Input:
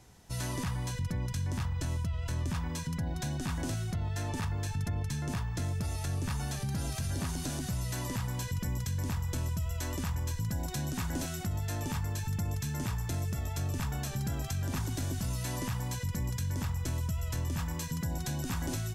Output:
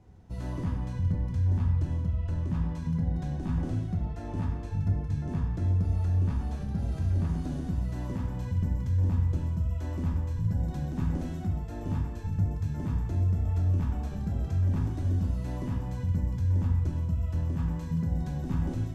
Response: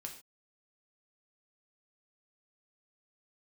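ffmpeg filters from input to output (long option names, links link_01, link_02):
-filter_complex "[0:a]lowpass=frequency=1700:poles=1,tiltshelf=frequency=670:gain=5.5[link_01];[1:a]atrim=start_sample=2205,asetrate=28665,aresample=44100[link_02];[link_01][link_02]afir=irnorm=-1:irlink=0"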